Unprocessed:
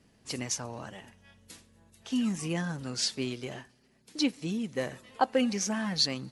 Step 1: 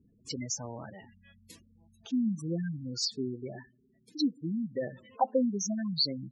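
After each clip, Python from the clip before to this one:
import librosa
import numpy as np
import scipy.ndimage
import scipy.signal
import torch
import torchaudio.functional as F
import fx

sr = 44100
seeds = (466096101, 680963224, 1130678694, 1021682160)

y = fx.spec_gate(x, sr, threshold_db=-10, keep='strong')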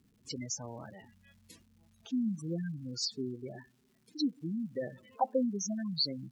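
y = fx.dmg_crackle(x, sr, seeds[0], per_s=460.0, level_db=-58.0)
y = y * librosa.db_to_amplitude(-3.0)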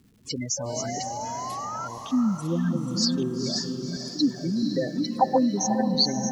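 y = fx.reverse_delay(x, sr, ms=661, wet_db=-5.5)
y = fx.spec_paint(y, sr, seeds[1], shape='rise', start_s=0.57, length_s=1.31, low_hz=550.0, high_hz=1400.0, level_db=-43.0)
y = fx.echo_diffused(y, sr, ms=492, feedback_pct=48, wet_db=-6.5)
y = y * librosa.db_to_amplitude(9.0)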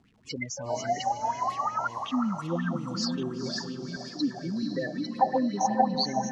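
y = fx.air_absorb(x, sr, metres=62.0)
y = fx.bell_lfo(y, sr, hz=5.5, low_hz=700.0, high_hz=2900.0, db=17)
y = y * librosa.db_to_amplitude(-5.5)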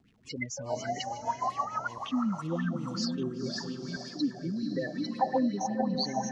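y = fx.rotary_switch(x, sr, hz=6.7, then_hz=0.8, switch_at_s=2.15)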